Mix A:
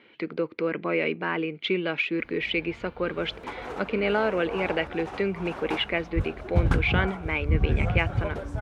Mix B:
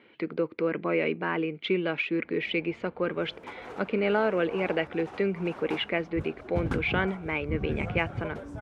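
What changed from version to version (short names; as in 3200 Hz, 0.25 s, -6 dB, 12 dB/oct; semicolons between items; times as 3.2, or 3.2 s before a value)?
speech: add high shelf 2400 Hz -6.5 dB; first sound -6.0 dB; second sound: add band-pass 390 Hz, Q 0.72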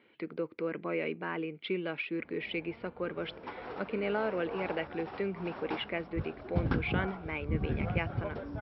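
speech -7.0 dB; master: add brick-wall FIR low-pass 5600 Hz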